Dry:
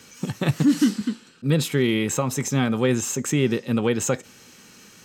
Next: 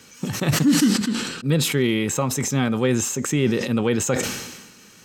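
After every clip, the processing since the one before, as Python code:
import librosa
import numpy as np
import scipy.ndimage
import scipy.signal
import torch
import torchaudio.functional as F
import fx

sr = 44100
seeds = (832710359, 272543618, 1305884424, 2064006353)

y = fx.sustainer(x, sr, db_per_s=48.0)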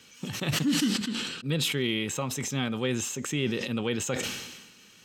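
y = fx.peak_eq(x, sr, hz=3100.0, db=8.5, octaves=0.91)
y = F.gain(torch.from_numpy(y), -9.0).numpy()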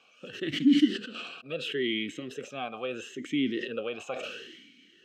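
y = fx.vowel_sweep(x, sr, vowels='a-i', hz=0.74)
y = F.gain(torch.from_numpy(y), 9.0).numpy()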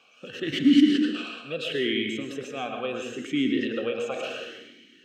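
y = fx.rev_plate(x, sr, seeds[0], rt60_s=0.74, hf_ratio=0.6, predelay_ms=95, drr_db=3.5)
y = F.gain(torch.from_numpy(y), 2.5).numpy()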